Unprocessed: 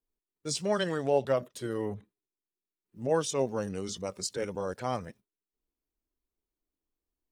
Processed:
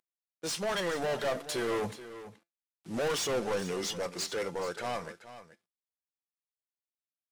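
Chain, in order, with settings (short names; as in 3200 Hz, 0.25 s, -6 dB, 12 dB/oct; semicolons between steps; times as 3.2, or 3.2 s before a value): CVSD 64 kbps; Doppler pass-by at 2.37, 15 m/s, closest 6.6 m; overdrive pedal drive 33 dB, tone 5900 Hz, clips at -19 dBFS; resonator 170 Hz, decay 0.19 s, harmonics all, mix 50%; on a send: echo 0.429 s -14 dB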